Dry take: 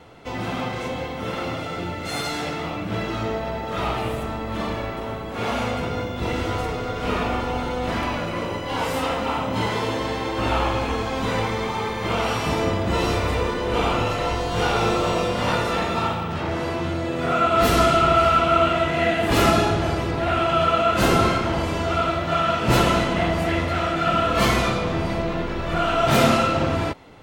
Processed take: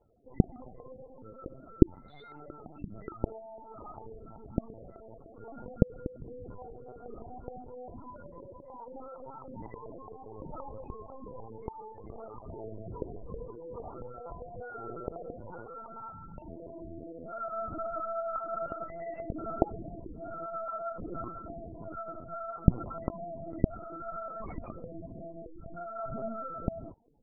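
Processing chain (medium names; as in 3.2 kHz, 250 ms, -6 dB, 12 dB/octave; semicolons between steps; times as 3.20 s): loudest bins only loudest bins 8; LPC vocoder at 8 kHz pitch kept; trim -16.5 dB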